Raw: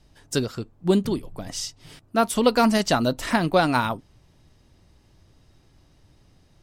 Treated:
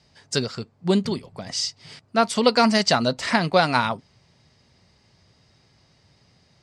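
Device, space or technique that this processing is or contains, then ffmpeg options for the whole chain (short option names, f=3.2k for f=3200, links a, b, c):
car door speaker: -af "highpass=110,equalizer=f=310:t=q:w=4:g=-10,equalizer=f=2.1k:t=q:w=4:g=5,equalizer=f=4.7k:t=q:w=4:g=8,lowpass=f=8.4k:w=0.5412,lowpass=f=8.4k:w=1.3066,volume=1.5dB"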